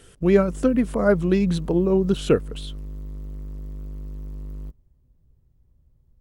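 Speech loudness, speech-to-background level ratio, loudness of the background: -21.0 LUFS, 16.5 dB, -37.5 LUFS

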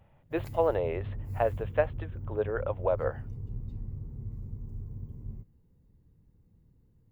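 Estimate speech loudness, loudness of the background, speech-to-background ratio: -31.5 LUFS, -40.5 LUFS, 9.0 dB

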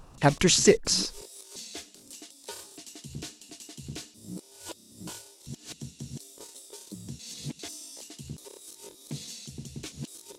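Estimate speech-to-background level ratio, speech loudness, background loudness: 19.5 dB, -22.5 LUFS, -42.0 LUFS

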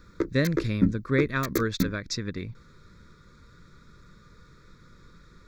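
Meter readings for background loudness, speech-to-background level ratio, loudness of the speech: -31.0 LUFS, 2.0 dB, -29.0 LUFS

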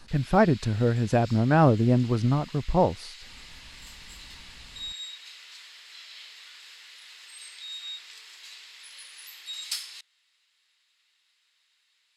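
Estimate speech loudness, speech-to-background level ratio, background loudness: -23.5 LUFS, 17.5 dB, -41.0 LUFS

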